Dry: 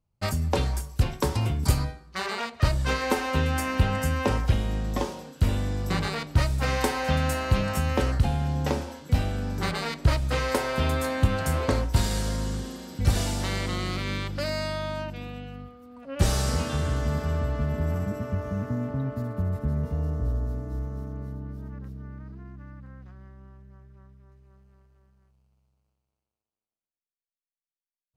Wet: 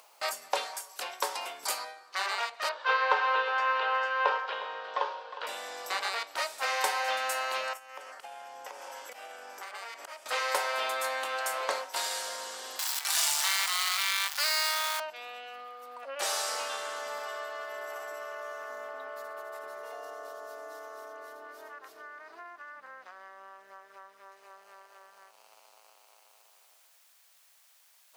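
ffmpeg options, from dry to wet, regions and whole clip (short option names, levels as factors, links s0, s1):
-filter_complex "[0:a]asettb=1/sr,asplit=3[s0][s1][s2];[s0]atrim=end=2.694[s3];[s1]atrim=start=2.69:end=5.47,asetpts=PTS-STARTPTS,afade=t=in:d=0.004:c=qsin,afade=t=out:st=2.776:d=0.004:c=qsin,highpass=270,equalizer=f=290:t=q:w=4:g=-8,equalizer=f=470:t=q:w=4:g=8,equalizer=f=700:t=q:w=4:g=-5,equalizer=f=1000:t=q:w=4:g=7,equalizer=f=1500:t=q:w=4:g=6,equalizer=f=2100:t=q:w=4:g=-4,lowpass=f=3900:w=0.5412,lowpass=f=3900:w=1.3066,aecho=1:1:360:0.168,atrim=end_sample=122598[s4];[s2]atrim=start=5.466[s5];[s3][s4]acrossfade=d=0.004:c1=hsin:c2=qsin[s6];[s6][s5]acrossfade=d=0.004:c1=qsin:c2=hsin,asettb=1/sr,asplit=3[s7][s8][s9];[s7]atrim=end=7.734[s10];[s8]atrim=start=7.73:end=10.26,asetpts=PTS-STARTPTS,afade=t=in:d=0.004:c=qsin,afade=t=out:st=2.526:d=0.004:c=qsin,equalizer=f=4000:t=o:w=0.32:g=-10,acompressor=threshold=0.0112:ratio=8:attack=3.2:release=140:knee=1:detection=peak[s11];[s9]atrim=start=10.256[s12];[s10][s11]acrossfade=d=0.004:c1=hsin:c2=qsin[s13];[s13][s12]acrossfade=d=0.004:c1=qsin:c2=hsin,asettb=1/sr,asplit=3[s14][s15][s16];[s14]atrim=end=12.794[s17];[s15]atrim=start=12.79:end=15,asetpts=PTS-STARTPTS,afade=t=in:d=0.004:c=qsin,afade=t=out:st=2.206:d=0.004:c=qsin,aeval=exprs='val(0)+0.5*0.0422*sgn(val(0))':c=same,highpass=f=880:w=0.5412,highpass=f=880:w=1.3066,highshelf=f=4400:g=7.5[s18];[s16]atrim=start=14.996[s19];[s17][s18]acrossfade=d=0.004:c1=hsin:c2=qsin[s20];[s20][s19]acrossfade=d=0.004:c1=qsin:c2=hsin,asettb=1/sr,asplit=3[s21][s22][s23];[s21]atrim=end=17.264[s24];[s22]atrim=start=17.26:end=22.76,asetpts=PTS-STARTPTS,afade=t=in:d=0.004:c=qsin,afade=t=out:st=5.496:d=0.004:c=qsin,equalizer=f=200:w=1.4:g=-10.5,aecho=1:1:2.8:0.47,atrim=end_sample=242550[s25];[s23]atrim=start=22.756[s26];[s24][s25]acrossfade=d=0.004:c1=hsin:c2=qsin[s27];[s27][s26]acrossfade=d=0.004:c1=qsin:c2=hsin,highpass=f=620:w=0.5412,highpass=f=620:w=1.3066,acompressor=mode=upward:threshold=0.0178:ratio=2.5"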